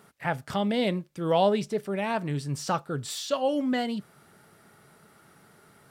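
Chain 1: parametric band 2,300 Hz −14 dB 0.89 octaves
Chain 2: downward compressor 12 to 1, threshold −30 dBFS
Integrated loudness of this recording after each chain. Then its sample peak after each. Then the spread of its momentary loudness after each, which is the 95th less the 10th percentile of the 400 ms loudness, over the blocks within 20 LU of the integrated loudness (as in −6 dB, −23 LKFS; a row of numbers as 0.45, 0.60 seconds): −29.0, −35.0 LKFS; −12.0, −19.5 dBFS; 9, 4 LU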